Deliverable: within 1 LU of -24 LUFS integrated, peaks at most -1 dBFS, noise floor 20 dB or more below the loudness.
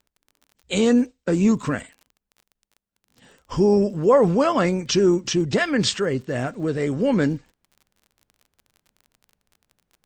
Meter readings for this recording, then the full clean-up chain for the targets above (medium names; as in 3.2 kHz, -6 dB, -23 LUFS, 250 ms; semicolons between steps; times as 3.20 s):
tick rate 34 per s; loudness -21.0 LUFS; peak level -6.5 dBFS; loudness target -24.0 LUFS
-> de-click; trim -3 dB